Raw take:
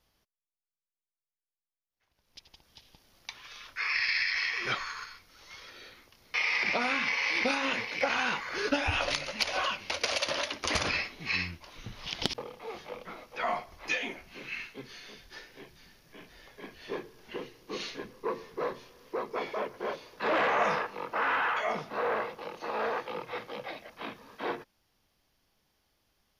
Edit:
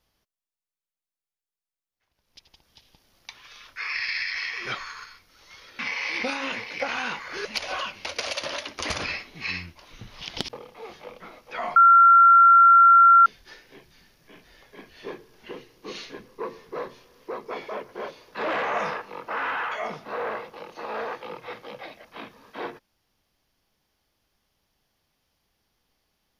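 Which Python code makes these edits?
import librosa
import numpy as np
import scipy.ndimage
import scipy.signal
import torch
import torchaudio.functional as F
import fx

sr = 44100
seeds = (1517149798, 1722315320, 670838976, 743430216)

y = fx.edit(x, sr, fx.cut(start_s=5.79, length_s=1.21),
    fx.cut(start_s=8.66, length_s=0.64),
    fx.bleep(start_s=13.61, length_s=1.5, hz=1370.0, db=-10.0), tone=tone)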